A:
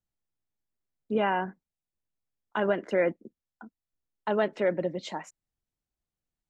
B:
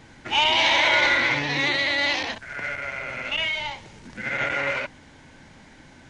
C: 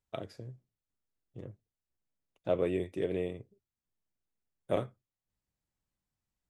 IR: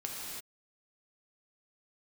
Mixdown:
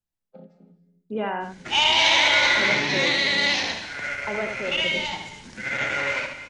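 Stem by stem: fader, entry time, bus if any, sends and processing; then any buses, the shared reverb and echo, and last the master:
-1.0 dB, 0.00 s, no send, echo send -5.5 dB, random-step tremolo
-4.5 dB, 1.40 s, send -8 dB, echo send -5 dB, expander -45 dBFS; peaking EQ 6.7 kHz +7.5 dB 2 oct
-7.5 dB, 0.20 s, send -7 dB, no echo send, vocoder on a held chord minor triad, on F3; bass shelf 260 Hz +6.5 dB; harmonic-percussive split percussive -9 dB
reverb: on, pre-delay 3 ms
echo: delay 74 ms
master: none

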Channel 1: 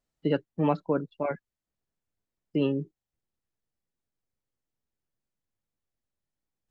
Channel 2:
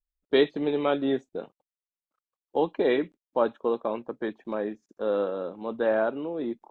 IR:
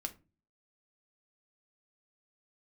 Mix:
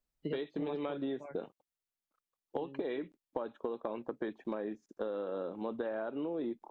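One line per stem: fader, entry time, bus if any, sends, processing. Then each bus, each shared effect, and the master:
-6.5 dB, 0.00 s, no send, auto duck -14 dB, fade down 1.60 s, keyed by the second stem
-0.5 dB, 0.00 s, no send, compression, threshold -28 dBFS, peak gain reduction 12 dB; peaking EQ 330 Hz +2 dB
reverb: none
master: compression, threshold -33 dBFS, peak gain reduction 8.5 dB

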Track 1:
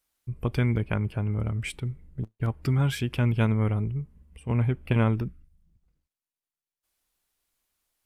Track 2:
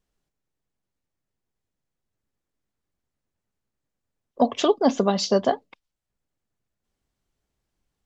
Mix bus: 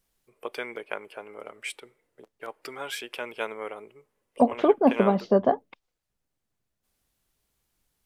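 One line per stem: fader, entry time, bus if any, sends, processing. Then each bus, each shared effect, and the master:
+0.5 dB, 0.00 s, no send, Chebyshev high-pass 460 Hz, order 3
0.0 dB, 0.00 s, no send, low-pass that closes with the level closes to 1.4 kHz, closed at -21.5 dBFS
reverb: none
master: none

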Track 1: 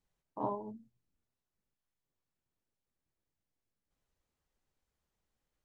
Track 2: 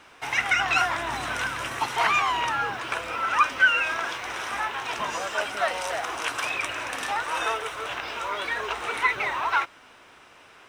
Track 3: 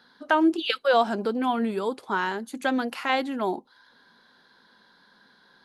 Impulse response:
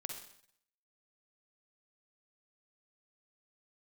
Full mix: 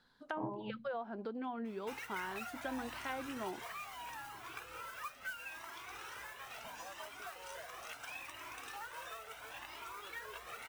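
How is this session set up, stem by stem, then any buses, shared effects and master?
+2.5 dB, 0.00 s, bus A, no send, peaking EQ 140 Hz +13.5 dB 0.38 oct
-10.0 dB, 1.65 s, no bus, no send, compression 4:1, threshold -31 dBFS, peak gain reduction 14.5 dB; modulation noise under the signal 11 dB; Shepard-style flanger rising 0.74 Hz
-13.5 dB, 0.00 s, bus A, no send, none
bus A: 0.0 dB, low-pass that closes with the level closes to 1.8 kHz, closed at -33 dBFS; compression 6:1, threshold -37 dBFS, peak gain reduction 12 dB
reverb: none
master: none

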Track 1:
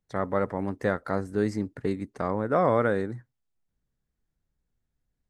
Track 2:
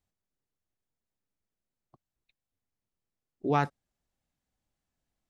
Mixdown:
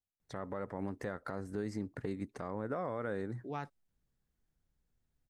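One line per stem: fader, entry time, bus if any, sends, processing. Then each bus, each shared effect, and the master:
-1.0 dB, 0.20 s, no send, compression 4:1, threshold -32 dBFS, peak gain reduction 12.5 dB
-14.5 dB, 0.00 s, no send, none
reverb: none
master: peak limiter -27 dBFS, peak gain reduction 8 dB

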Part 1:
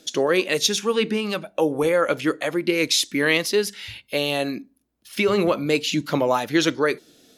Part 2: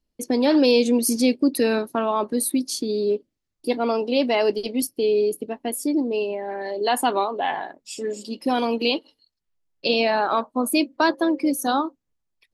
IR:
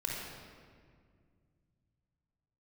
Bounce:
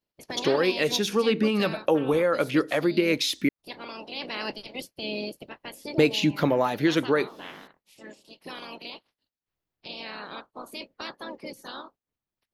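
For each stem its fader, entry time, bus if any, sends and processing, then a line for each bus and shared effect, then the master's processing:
-1.0 dB, 0.30 s, muted 3.49–5.98 s, no send, compression 2:1, threshold -25 dBFS, peak gain reduction 6.5 dB; bass shelf 410 Hz +3.5 dB; level rider gain up to 4 dB
-15.5 dB, 0.00 s, no send, spectral peaks clipped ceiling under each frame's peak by 27 dB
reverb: none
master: peaking EQ 7.9 kHz -9.5 dB 1.2 oct; gain riding within 4 dB 0.5 s

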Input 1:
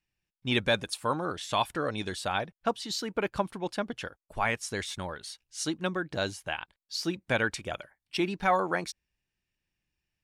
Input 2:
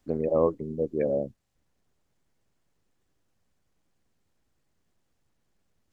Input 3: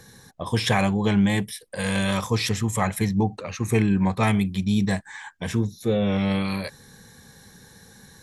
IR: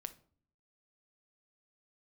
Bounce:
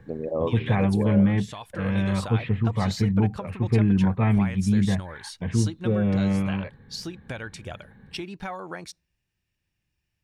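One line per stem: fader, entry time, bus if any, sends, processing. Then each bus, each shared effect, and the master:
+2.0 dB, 0.00 s, send -18 dB, peaking EQ 95 Hz +8 dB 1.4 oct; compression 6:1, threshold -35 dBFS, peak gain reduction 14.5 dB; auto duck -12 dB, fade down 1.70 s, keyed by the second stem
-3.5 dB, 0.00 s, no send, none
-7.0 dB, 0.00 s, no send, inverse Chebyshev low-pass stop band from 5.4 kHz, stop band 40 dB; bass shelf 300 Hz +11 dB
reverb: on, RT60 0.50 s, pre-delay 6 ms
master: none

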